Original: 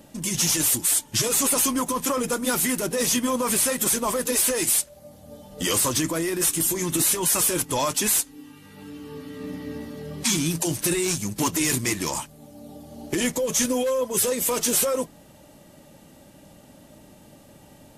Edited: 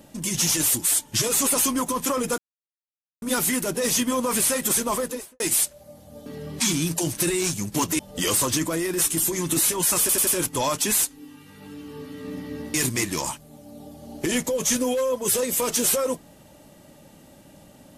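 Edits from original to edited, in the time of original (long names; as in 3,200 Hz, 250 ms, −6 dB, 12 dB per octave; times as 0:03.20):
0:02.38: splice in silence 0.84 s
0:04.09–0:04.56: fade out and dull
0:07.43: stutter 0.09 s, 4 plays
0:09.90–0:11.63: move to 0:05.42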